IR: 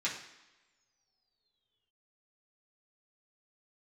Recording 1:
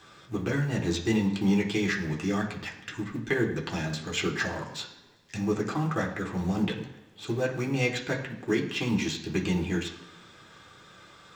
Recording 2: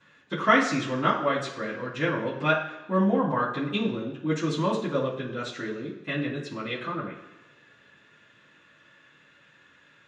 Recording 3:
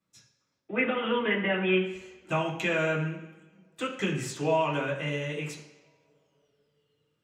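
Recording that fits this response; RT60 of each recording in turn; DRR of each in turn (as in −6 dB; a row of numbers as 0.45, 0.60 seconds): 3; non-exponential decay, non-exponential decay, non-exponential decay; −1.0, −15.0, −7.5 decibels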